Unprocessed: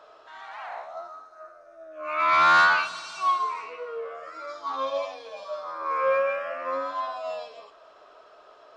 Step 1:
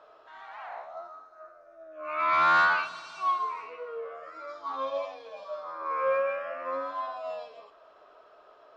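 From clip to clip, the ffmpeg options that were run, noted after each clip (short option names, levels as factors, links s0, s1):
-af "lowpass=f=2700:p=1,volume=0.708"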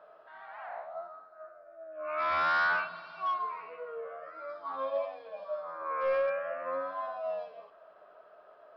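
-af "equalizer=f=180:t=o:w=0.48:g=10.5,aresample=11025,asoftclip=type=hard:threshold=0.0668,aresample=44100,equalizer=f=630:t=o:w=0.67:g=8,equalizer=f=1600:t=o:w=0.67:g=6,equalizer=f=4000:t=o:w=0.67:g=-4,volume=0.473"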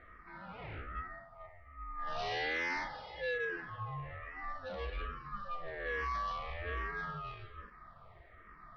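-filter_complex "[0:a]aresample=11025,asoftclip=type=tanh:threshold=0.0178,aresample=44100,aeval=exprs='val(0)*sin(2*PI*600*n/s)':c=same,asplit=2[s0][s1];[s1]afreqshift=-1.2[s2];[s0][s2]amix=inputs=2:normalize=1,volume=2"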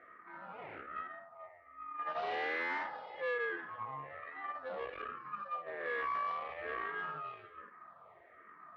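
-af "aeval=exprs='(tanh(44.7*val(0)+0.75)-tanh(0.75))/44.7':c=same,highpass=310,lowpass=2000,volume=2"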